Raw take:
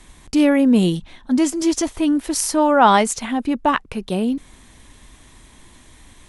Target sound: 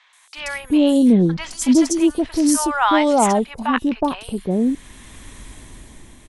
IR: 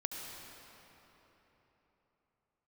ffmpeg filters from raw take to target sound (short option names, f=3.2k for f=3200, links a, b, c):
-filter_complex "[0:a]dynaudnorm=f=210:g=9:m=11dB,acrossover=split=890|4400[a][b][c];[c]adelay=130[d];[a]adelay=370[e];[e][b][d]amix=inputs=3:normalize=0"